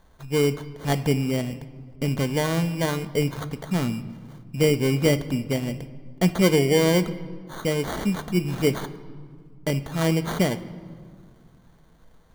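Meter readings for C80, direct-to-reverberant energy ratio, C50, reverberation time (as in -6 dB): 16.0 dB, 9.5 dB, 14.0 dB, 1.9 s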